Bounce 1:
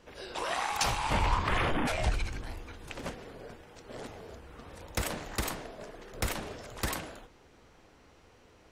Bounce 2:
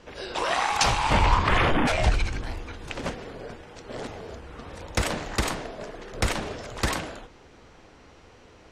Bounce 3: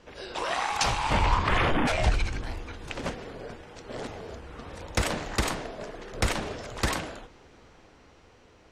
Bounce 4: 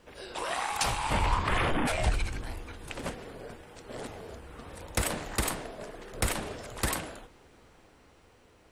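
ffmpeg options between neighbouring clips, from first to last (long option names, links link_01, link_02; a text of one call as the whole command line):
ffmpeg -i in.wav -af "lowpass=7900,volume=7.5dB" out.wav
ffmpeg -i in.wav -af "dynaudnorm=framelen=290:gausssize=11:maxgain=3dB,volume=-4dB" out.wav
ffmpeg -i in.wav -af "aexciter=amount=4:drive=5.2:freq=8300,volume=-3.5dB" out.wav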